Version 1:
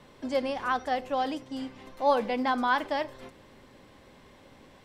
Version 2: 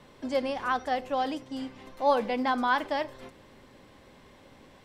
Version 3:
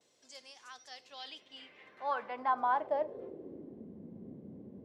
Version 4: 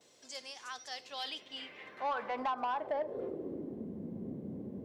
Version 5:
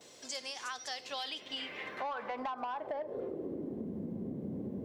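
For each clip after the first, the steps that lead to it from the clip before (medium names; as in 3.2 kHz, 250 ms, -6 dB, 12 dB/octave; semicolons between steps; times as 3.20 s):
no audible change
gate with hold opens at -49 dBFS; band noise 60–540 Hz -43 dBFS; band-pass sweep 6.7 kHz -> 210 Hz, 0.76–3.91 s
compression 10:1, threshold -35 dBFS, peak gain reduction 10.5 dB; saturation -34.5 dBFS, distortion -15 dB; trim +7 dB
compression 6:1, threshold -45 dBFS, peak gain reduction 13 dB; trim +8.5 dB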